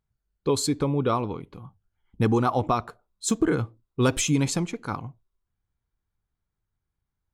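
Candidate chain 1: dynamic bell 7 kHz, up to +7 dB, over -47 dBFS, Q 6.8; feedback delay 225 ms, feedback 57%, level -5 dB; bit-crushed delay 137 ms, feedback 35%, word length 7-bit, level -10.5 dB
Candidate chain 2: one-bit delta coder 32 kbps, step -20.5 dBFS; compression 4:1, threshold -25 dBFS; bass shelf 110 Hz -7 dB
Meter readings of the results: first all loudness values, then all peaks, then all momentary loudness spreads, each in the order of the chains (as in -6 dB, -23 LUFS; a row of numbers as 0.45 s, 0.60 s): -24.0 LUFS, -30.0 LUFS; -7.5 dBFS, -15.5 dBFS; 15 LU, 3 LU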